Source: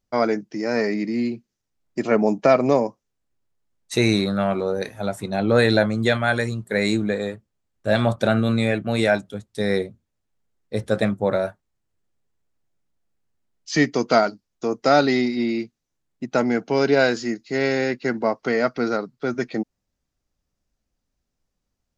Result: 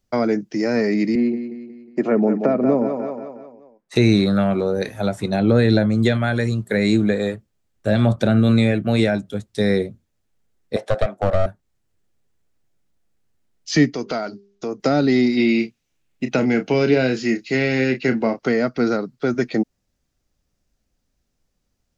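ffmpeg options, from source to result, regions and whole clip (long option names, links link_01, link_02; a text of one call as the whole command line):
ffmpeg -i in.wav -filter_complex "[0:a]asettb=1/sr,asplit=3[link_01][link_02][link_03];[link_01]atrim=end=1.154[link_04];[link_02]atrim=start=1.15:end=3.96,asetpts=PTS-STARTPTS,afade=type=in:duration=0.004:curve=qsin,afade=type=out:start_time=2.806:duration=0.004:curve=qsin,acrossover=split=160 2000:gain=0.0794 1 0.141[link_05][link_06][link_07];[link_05][link_06][link_07]amix=inputs=3:normalize=0,aecho=1:1:181|362|543|724|905:0.316|0.149|0.0699|0.0328|0.0154,atrim=end_sample=123921[link_08];[link_03]atrim=start=3.956[link_09];[link_04][link_08]acrossfade=duration=0.004:curve1=hsin:curve2=qsin[link_10];[link_10][link_09]acrossfade=duration=0.004:curve1=qsin:curve2=hsin,asettb=1/sr,asplit=3[link_11][link_12][link_13];[link_11]atrim=end=10.764[link_14];[link_12]atrim=start=10.76:end=11.46,asetpts=PTS-STARTPTS,afade=type=in:duration=0.004:curve=qsin,afade=type=out:start_time=0.696:duration=0.004:curve=qsin,highpass=frequency=670:width_type=q:width=4.9,highshelf=frequency=8100:gain=-10.5,aeval=exprs='clip(val(0),-1,0.106)':channel_layout=same[link_15];[link_13]atrim=start=11.456[link_16];[link_14][link_15]acrossfade=duration=0.004:curve1=hsin:curve2=qsin[link_17];[link_17][link_16]acrossfade=duration=0.004:curve1=qsin:curve2=hsin,asettb=1/sr,asplit=3[link_18][link_19][link_20];[link_18]atrim=end=13.924[link_21];[link_19]atrim=start=13.92:end=14.8,asetpts=PTS-STARTPTS,afade=type=in:duration=0.004:curve=qsin,afade=type=out:start_time=0.876:duration=0.004:curve=qsin,lowpass=frequency=6400:width=0.5412,lowpass=frequency=6400:width=1.3066,bandreject=frequency=200:width_type=h:width=4,bandreject=frequency=400:width_type=h:width=4,acompressor=threshold=-34dB:ratio=2:attack=3.2:release=140:knee=1:detection=peak[link_22];[link_20]atrim=start=14.796[link_23];[link_21][link_22]acrossfade=duration=0.004:curve1=hsin:curve2=qsin[link_24];[link_24][link_23]acrossfade=duration=0.004:curve1=qsin:curve2=hsin,asettb=1/sr,asplit=3[link_25][link_26][link_27];[link_25]atrim=end=15.374[link_28];[link_26]atrim=start=15.37:end=18.39,asetpts=PTS-STARTPTS,afade=type=in:duration=0.004:curve=qsin,afade=type=out:start_time=3.016:duration=0.004:curve=qsin,equalizer=frequency=2600:width_type=o:width=0.74:gain=9,asplit=2[link_29][link_30];[link_30]adelay=31,volume=-9dB[link_31];[link_29][link_31]amix=inputs=2:normalize=0,atrim=end_sample=133182[link_32];[link_27]atrim=start=18.386[link_33];[link_28][link_32]acrossfade=duration=0.004:curve1=hsin:curve2=qsin[link_34];[link_34][link_33]acrossfade=duration=0.004:curve1=qsin:curve2=hsin,acrossover=split=7200[link_35][link_36];[link_36]acompressor=threshold=-53dB:ratio=4:attack=1:release=60[link_37];[link_35][link_37]amix=inputs=2:normalize=0,equalizer=frequency=1000:width_type=o:width=0.77:gain=-3,acrossover=split=350[link_38][link_39];[link_39]acompressor=threshold=-27dB:ratio=6[link_40];[link_38][link_40]amix=inputs=2:normalize=0,volume=6dB" out.wav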